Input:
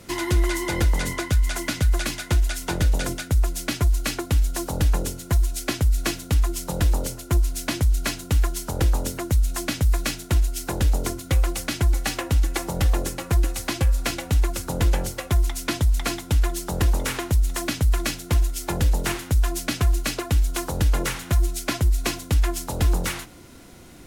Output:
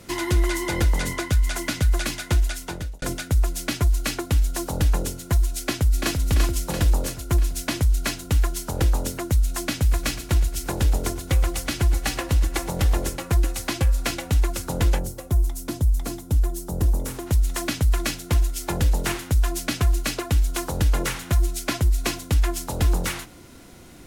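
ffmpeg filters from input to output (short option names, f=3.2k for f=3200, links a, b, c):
-filter_complex "[0:a]asplit=2[a][b];[b]afade=t=in:st=5.59:d=0.01,afade=t=out:st=6.22:d=0.01,aecho=0:1:340|680|1020|1360|1700|2040|2380|2720|3060:0.595662|0.357397|0.214438|0.128663|0.0771978|0.0463187|0.0277912|0.0166747|0.0100048[c];[a][c]amix=inputs=2:normalize=0,asplit=3[d][e][f];[d]afade=t=out:st=9.8:d=0.02[g];[e]aecho=1:1:117|234|351|468|585|702:0.178|0.105|0.0619|0.0365|0.0215|0.0127,afade=t=in:st=9.8:d=0.02,afade=t=out:st=13.15:d=0.02[h];[f]afade=t=in:st=13.15:d=0.02[i];[g][h][i]amix=inputs=3:normalize=0,asplit=3[j][k][l];[j]afade=t=out:st=14.98:d=0.02[m];[k]equalizer=f=2.3k:w=0.44:g=-14.5,afade=t=in:st=14.98:d=0.02,afade=t=out:st=17.26:d=0.02[n];[l]afade=t=in:st=17.26:d=0.02[o];[m][n][o]amix=inputs=3:normalize=0,asplit=2[p][q];[p]atrim=end=3.02,asetpts=PTS-STARTPTS,afade=t=out:st=2.42:d=0.6[r];[q]atrim=start=3.02,asetpts=PTS-STARTPTS,afade=t=in:d=0.004:c=hsin[s];[r][s]concat=n=2:v=0:a=1"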